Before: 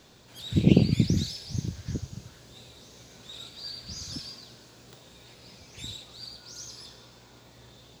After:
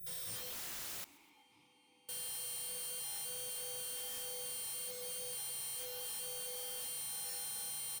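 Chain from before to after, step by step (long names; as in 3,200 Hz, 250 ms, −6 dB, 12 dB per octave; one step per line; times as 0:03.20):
every partial snapped to a pitch grid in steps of 4 semitones
inverse Chebyshev band-stop filter 640–5,700 Hz, stop band 80 dB
low-shelf EQ 320 Hz +6.5 dB
double-tracking delay 42 ms −10 dB
reverse bouncing-ball delay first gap 30 ms, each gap 1.15×, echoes 5
high-pass filter sweep 310 Hz → 1,700 Hz, 0:00.97–0:01.83
wrap-around overflow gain 55 dB
0:01.04–0:02.09: formant filter u
feedback echo with a swinging delay time 127 ms, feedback 51%, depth 183 cents, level −20.5 dB
level +15.5 dB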